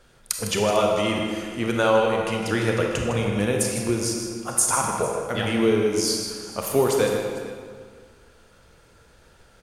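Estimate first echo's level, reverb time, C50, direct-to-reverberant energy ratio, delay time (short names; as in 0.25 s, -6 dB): -9.0 dB, 1.9 s, 1.0 dB, 0.0 dB, 0.156 s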